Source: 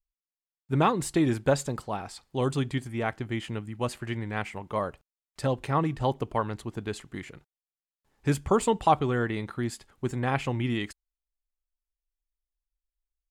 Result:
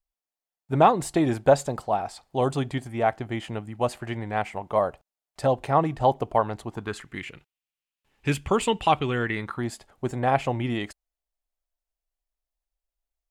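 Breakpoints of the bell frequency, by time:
bell +11.5 dB 0.8 oct
6.67 s 700 Hz
7.22 s 2700 Hz
9.21 s 2700 Hz
9.69 s 670 Hz

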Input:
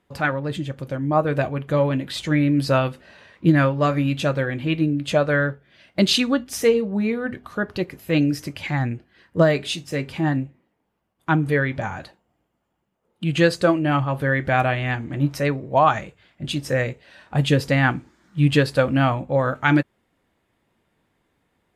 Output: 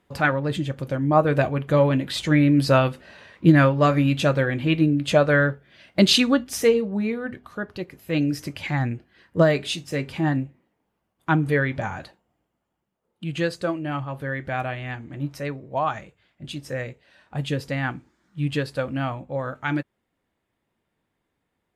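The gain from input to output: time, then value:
6.28 s +1.5 dB
7.84 s -7 dB
8.46 s -1 dB
11.95 s -1 dB
13.55 s -8 dB

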